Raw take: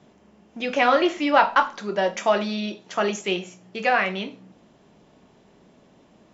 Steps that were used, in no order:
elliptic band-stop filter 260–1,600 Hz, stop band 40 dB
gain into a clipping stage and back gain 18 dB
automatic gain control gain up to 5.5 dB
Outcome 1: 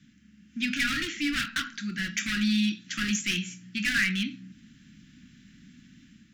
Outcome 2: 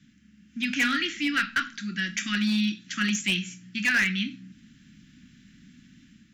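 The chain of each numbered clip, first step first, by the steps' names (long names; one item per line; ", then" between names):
automatic gain control, then gain into a clipping stage and back, then elliptic band-stop filter
automatic gain control, then elliptic band-stop filter, then gain into a clipping stage and back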